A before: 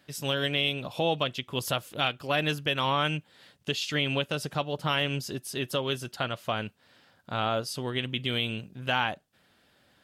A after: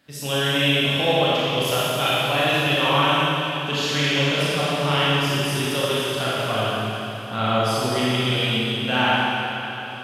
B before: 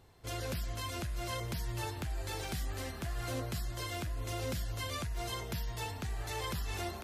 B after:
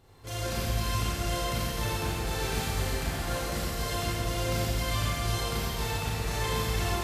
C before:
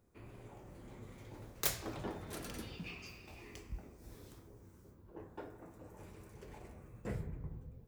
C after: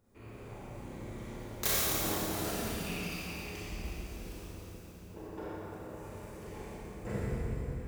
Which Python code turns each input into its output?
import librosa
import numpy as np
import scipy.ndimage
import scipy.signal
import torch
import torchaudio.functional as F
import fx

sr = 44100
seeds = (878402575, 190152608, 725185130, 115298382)

y = fx.echo_feedback(x, sr, ms=733, feedback_pct=53, wet_db=-19.0)
y = fx.rev_schroeder(y, sr, rt60_s=3.1, comb_ms=28, drr_db=-8.5)